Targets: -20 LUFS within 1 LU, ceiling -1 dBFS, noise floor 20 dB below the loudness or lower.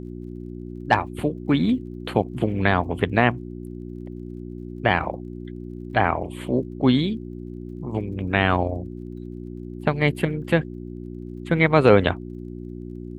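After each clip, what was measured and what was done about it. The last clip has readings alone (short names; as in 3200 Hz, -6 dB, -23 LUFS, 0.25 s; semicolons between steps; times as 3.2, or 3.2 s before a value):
ticks 36/s; hum 60 Hz; harmonics up to 360 Hz; hum level -32 dBFS; loudness -22.5 LUFS; peak -2.0 dBFS; loudness target -20.0 LUFS
-> de-click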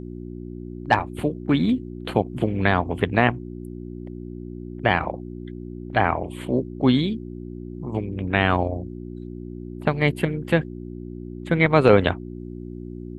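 ticks 0.076/s; hum 60 Hz; harmonics up to 360 Hz; hum level -32 dBFS
-> de-hum 60 Hz, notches 6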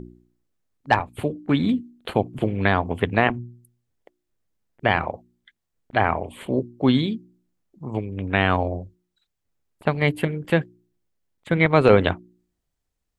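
hum none; loudness -22.5 LUFS; peak -2.5 dBFS; loudness target -20.0 LUFS
-> gain +2.5 dB; limiter -1 dBFS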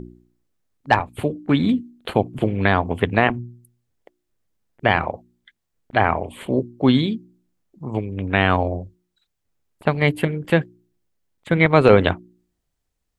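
loudness -20.5 LUFS; peak -1.0 dBFS; noise floor -77 dBFS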